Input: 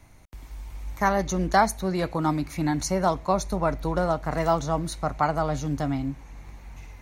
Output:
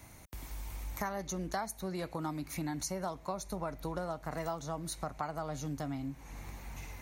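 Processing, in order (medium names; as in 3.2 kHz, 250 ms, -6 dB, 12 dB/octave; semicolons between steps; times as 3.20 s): high-pass 70 Hz 6 dB/octave; treble shelf 8.9 kHz +11.5 dB; compression 4:1, threshold -38 dBFS, peak gain reduction 19.5 dB; trim +1 dB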